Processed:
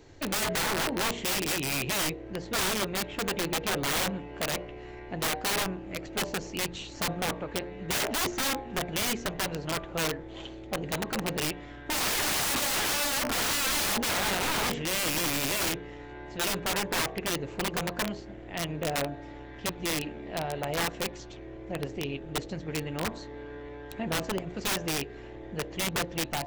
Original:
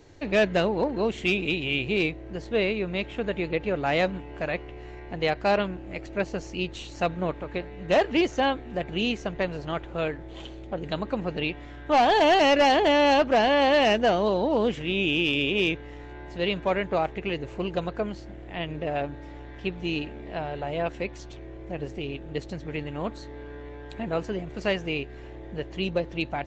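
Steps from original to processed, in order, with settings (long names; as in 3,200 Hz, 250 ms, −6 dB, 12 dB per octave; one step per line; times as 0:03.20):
hum removal 58.96 Hz, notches 20
wrap-around overflow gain 23 dB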